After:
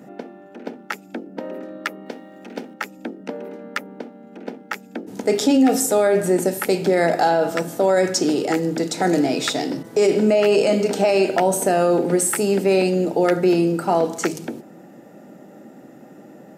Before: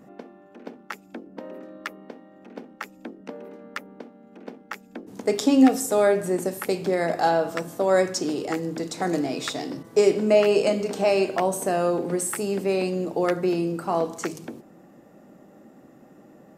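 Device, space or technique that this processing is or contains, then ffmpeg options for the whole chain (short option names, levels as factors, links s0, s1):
PA system with an anti-feedback notch: -filter_complex "[0:a]highpass=120,asuperstop=centerf=1100:order=4:qfactor=6.3,alimiter=limit=0.158:level=0:latency=1:release=21,asettb=1/sr,asplit=3[s0][s1][s2];[s0]atrim=end=2.064[s3];[s1]atrim=start=2.06:end=2.74,asetpts=PTS-STARTPTS,afade=t=in:d=0.004:c=qsin,afade=t=out:st=0.676:d=0.004:c=qsin,highshelf=f=2700:g=9.5[s4];[s2]atrim=start=2.736[s5];[s3][s4]acrossfade=d=0.004:c1=hsin:c2=qsin[s6];[s6][s5]acrossfade=d=0.004:c1=qsin:c2=hsin,volume=2.37"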